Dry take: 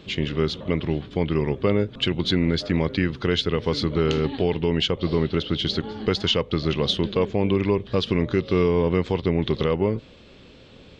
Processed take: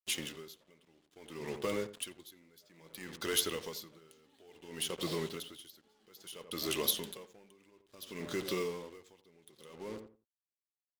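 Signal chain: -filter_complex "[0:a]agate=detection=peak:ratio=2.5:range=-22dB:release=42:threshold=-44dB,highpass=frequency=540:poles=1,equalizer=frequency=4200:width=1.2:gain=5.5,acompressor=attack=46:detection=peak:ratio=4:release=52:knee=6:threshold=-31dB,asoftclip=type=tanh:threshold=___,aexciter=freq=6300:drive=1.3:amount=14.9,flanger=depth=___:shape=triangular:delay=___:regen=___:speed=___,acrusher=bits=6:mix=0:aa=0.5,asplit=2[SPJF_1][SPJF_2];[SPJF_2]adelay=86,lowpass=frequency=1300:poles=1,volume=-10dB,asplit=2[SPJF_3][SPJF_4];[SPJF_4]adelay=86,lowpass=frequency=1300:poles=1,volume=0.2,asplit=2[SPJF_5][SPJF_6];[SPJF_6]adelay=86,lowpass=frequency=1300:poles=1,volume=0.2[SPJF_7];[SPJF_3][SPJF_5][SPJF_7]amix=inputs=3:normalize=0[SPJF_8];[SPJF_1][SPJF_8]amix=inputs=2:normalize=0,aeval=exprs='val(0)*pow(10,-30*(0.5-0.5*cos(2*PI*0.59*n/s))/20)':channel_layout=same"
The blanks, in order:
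-20dB, 4, 2.4, -48, 0.89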